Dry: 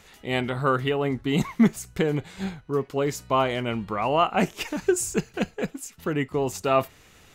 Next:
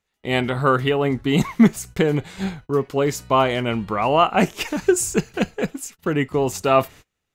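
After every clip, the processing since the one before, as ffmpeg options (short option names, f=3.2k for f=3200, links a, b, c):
-af "agate=range=-31dB:threshold=-44dB:ratio=16:detection=peak,volume=5dB"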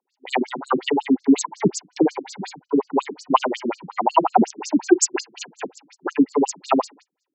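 -af "superequalizer=6b=2:9b=3.16:14b=2.51:15b=2.51,afftfilt=real='re*between(b*sr/1024,230*pow(6000/230,0.5+0.5*sin(2*PI*5.5*pts/sr))/1.41,230*pow(6000/230,0.5+0.5*sin(2*PI*5.5*pts/sr))*1.41)':imag='im*between(b*sr/1024,230*pow(6000/230,0.5+0.5*sin(2*PI*5.5*pts/sr))/1.41,230*pow(6000/230,0.5+0.5*sin(2*PI*5.5*pts/sr))*1.41)':win_size=1024:overlap=0.75,volume=4.5dB"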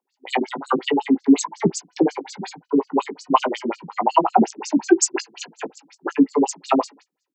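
-filter_complex "[0:a]asplit=2[a][b];[b]adelay=18,volume=-11dB[c];[a][c]amix=inputs=2:normalize=0"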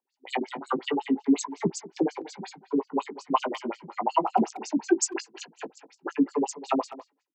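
-filter_complex "[0:a]asplit=2[a][b];[b]adelay=200,highpass=300,lowpass=3.4k,asoftclip=type=hard:threshold=-9dB,volume=-15dB[c];[a][c]amix=inputs=2:normalize=0,volume=-7.5dB"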